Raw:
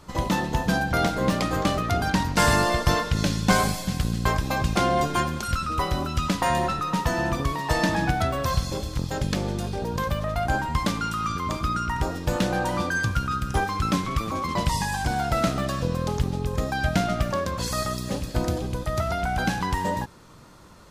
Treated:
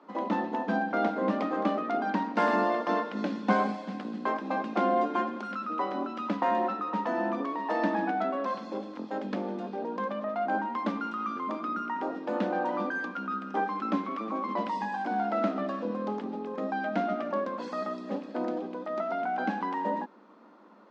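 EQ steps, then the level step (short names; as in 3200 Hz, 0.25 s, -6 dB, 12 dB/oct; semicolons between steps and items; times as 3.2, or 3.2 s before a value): rippled Chebyshev high-pass 200 Hz, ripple 3 dB; LPF 1200 Hz 6 dB/oct; air absorption 140 m; 0.0 dB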